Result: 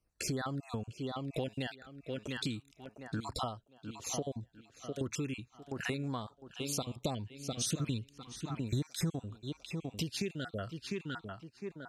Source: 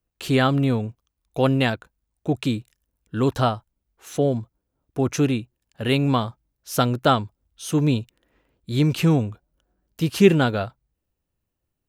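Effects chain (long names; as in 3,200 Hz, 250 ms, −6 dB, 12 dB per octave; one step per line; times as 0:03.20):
time-frequency cells dropped at random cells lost 33%
low-pass filter 7,900 Hz 12 dB per octave
high-shelf EQ 2,300 Hz +8.5 dB
tape delay 703 ms, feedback 31%, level −15 dB, low-pass 4,300 Hz
auto-filter notch saw down 0.35 Hz 490–3,600 Hz
downward compressor 12 to 1, threshold −34 dBFS, peak gain reduction 26 dB
0:07.04–0:09.10: bass and treble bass +4 dB, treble +3 dB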